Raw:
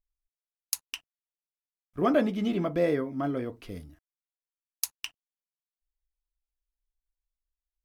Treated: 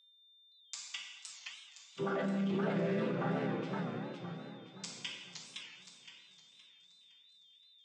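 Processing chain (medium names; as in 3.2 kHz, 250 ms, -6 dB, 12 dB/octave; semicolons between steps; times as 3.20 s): vocoder on a held chord major triad, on C3; tilt shelf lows -9 dB, about 850 Hz; whistle 3.6 kHz -63 dBFS; peaking EQ 190 Hz +6 dB 0.23 oct; plate-style reverb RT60 1.3 s, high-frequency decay 0.85×, DRR -1 dB; peak limiter -27 dBFS, peak gain reduction 12 dB; high-pass 150 Hz; feedback echo behind a high-pass 491 ms, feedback 55%, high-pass 2.2 kHz, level -20 dB; modulated delay 516 ms, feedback 38%, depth 199 cents, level -4 dB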